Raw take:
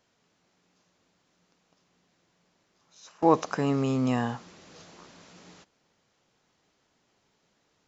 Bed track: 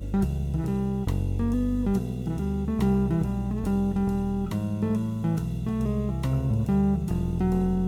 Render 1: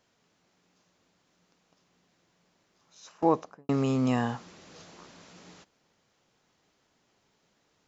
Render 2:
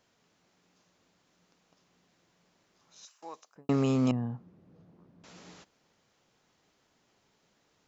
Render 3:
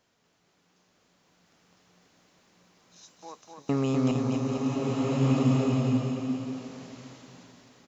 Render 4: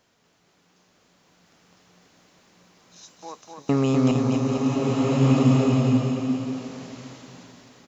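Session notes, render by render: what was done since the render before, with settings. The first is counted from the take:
0:03.08–0:03.69: fade out and dull
0:03.05–0:03.56: first difference; 0:04.11–0:05.24: resonant band-pass 130 Hz, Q 1
bouncing-ball delay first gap 250 ms, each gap 0.85×, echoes 5; slow-attack reverb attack 1,510 ms, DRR −4 dB
level +5.5 dB

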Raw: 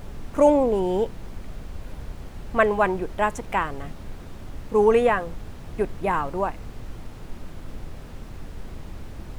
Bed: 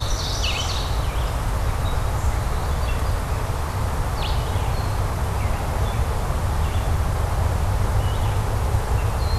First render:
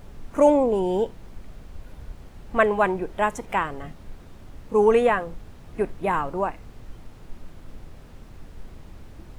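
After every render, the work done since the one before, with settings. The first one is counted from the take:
noise reduction from a noise print 6 dB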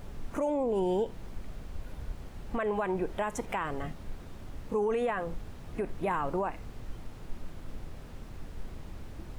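downward compressor, threshold −23 dBFS, peak gain reduction 11.5 dB
brickwall limiter −22 dBFS, peak gain reduction 9 dB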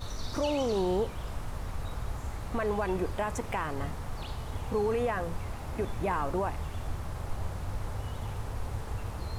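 mix in bed −15.5 dB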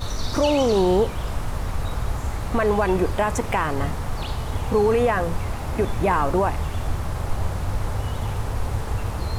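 level +10 dB

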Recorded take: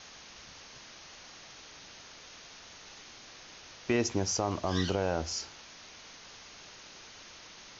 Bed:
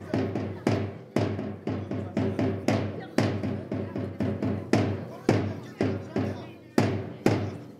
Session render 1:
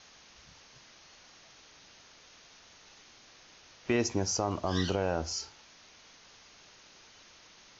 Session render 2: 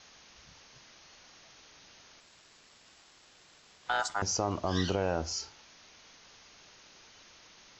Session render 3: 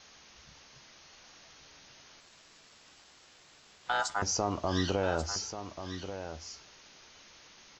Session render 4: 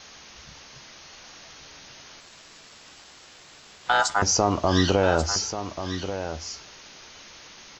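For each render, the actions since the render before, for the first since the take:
noise reduction from a noise print 6 dB
0:02.20–0:04.22: ring modulation 1,100 Hz
double-tracking delay 14 ms −11 dB; single-tap delay 1,137 ms −10 dB
level +9.5 dB

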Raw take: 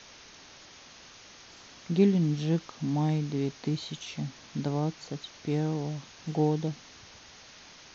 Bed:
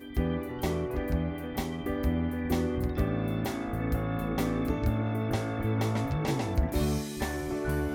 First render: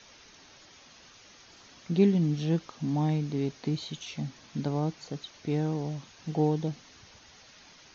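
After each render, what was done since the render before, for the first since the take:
broadband denoise 6 dB, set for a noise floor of −52 dBFS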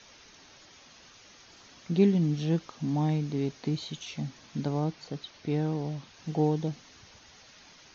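0:04.84–0:06.14: low-pass filter 5,900 Hz 24 dB per octave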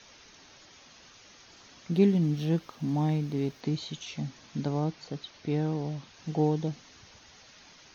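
0:01.92–0:03.61: running median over 5 samples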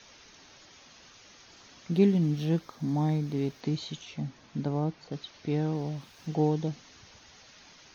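0:02.61–0:03.27: parametric band 2,800 Hz −11 dB 0.25 octaves
0:04.01–0:05.12: high-shelf EQ 2,700 Hz −8 dB
0:05.74–0:06.35: centre clipping without the shift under −58 dBFS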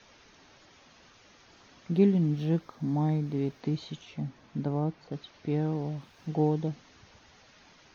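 high-shelf EQ 3,700 Hz −10.5 dB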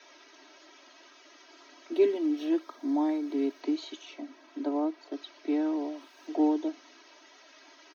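Butterworth high-pass 270 Hz 72 dB per octave
comb filter 3.1 ms, depth 95%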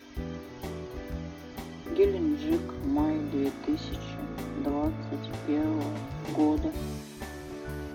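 mix in bed −7.5 dB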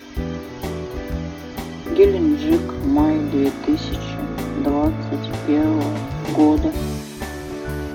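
level +10.5 dB

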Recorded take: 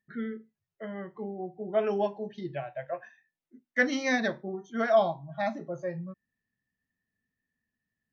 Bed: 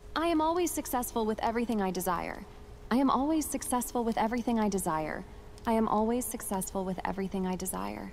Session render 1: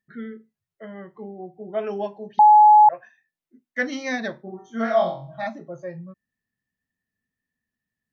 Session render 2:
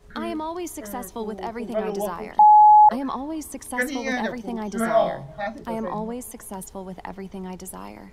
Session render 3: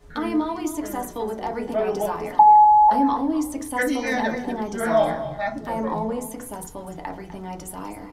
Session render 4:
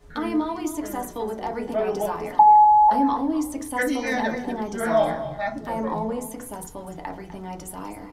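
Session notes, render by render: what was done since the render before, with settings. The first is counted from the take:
0:02.39–0:02.89: beep over 846 Hz −8 dBFS; 0:04.43–0:05.47: flutter between parallel walls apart 3.8 metres, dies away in 0.39 s
mix in bed −2 dB
single-tap delay 250 ms −13 dB; feedback delay network reverb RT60 0.34 s, low-frequency decay 1.25×, high-frequency decay 0.4×, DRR 2 dB
level −1 dB

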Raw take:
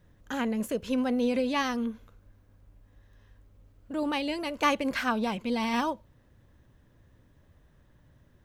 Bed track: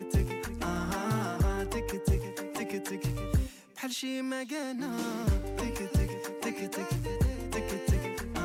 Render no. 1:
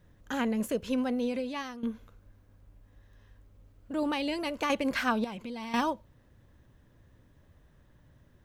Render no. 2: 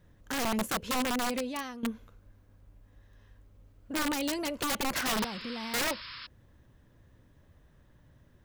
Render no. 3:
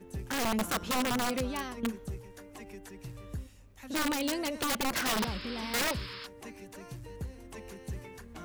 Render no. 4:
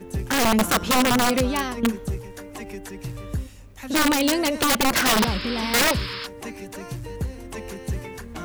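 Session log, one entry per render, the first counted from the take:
0:00.74–0:01.83: fade out, to −14.5 dB; 0:04.04–0:04.70: downward compressor 4 to 1, threshold −26 dBFS; 0:05.24–0:05.74: downward compressor 4 to 1, threshold −37 dBFS
wrap-around overflow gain 24.5 dB; 0:05.04–0:06.27: sound drawn into the spectrogram noise 950–5,400 Hz −44 dBFS
mix in bed track −12 dB
level +11 dB

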